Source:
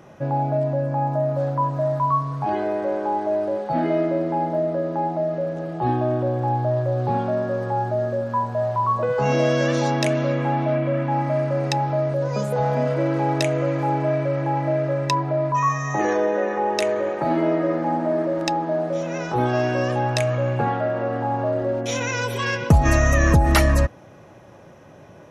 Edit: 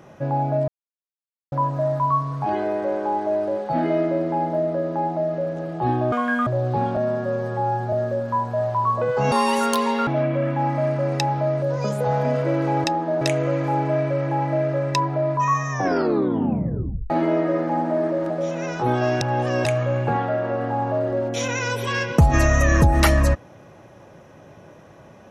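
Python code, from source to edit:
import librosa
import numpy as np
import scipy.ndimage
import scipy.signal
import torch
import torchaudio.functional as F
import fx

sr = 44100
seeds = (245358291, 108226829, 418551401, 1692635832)

y = fx.edit(x, sr, fx.silence(start_s=0.68, length_s=0.84),
    fx.speed_span(start_s=6.12, length_s=0.68, speed=1.96),
    fx.stretch_span(start_s=7.3, length_s=0.64, factor=1.5),
    fx.speed_span(start_s=9.33, length_s=1.26, speed=1.67),
    fx.tape_stop(start_s=15.85, length_s=1.4),
    fx.move(start_s=18.45, length_s=0.37, to_s=13.36),
    fx.reverse_span(start_s=19.73, length_s=0.44), tone=tone)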